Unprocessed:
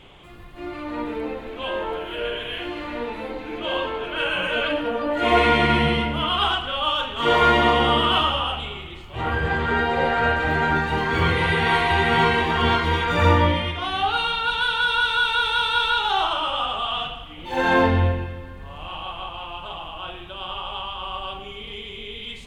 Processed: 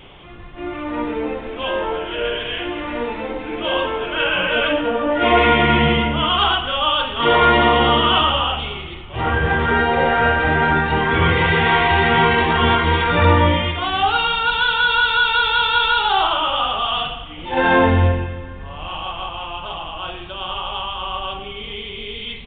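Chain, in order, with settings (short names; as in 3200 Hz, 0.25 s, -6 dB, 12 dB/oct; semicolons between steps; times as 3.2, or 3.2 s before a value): downsampling 8000 Hz; in parallel at -2 dB: limiter -12.5 dBFS, peak gain reduction 8 dB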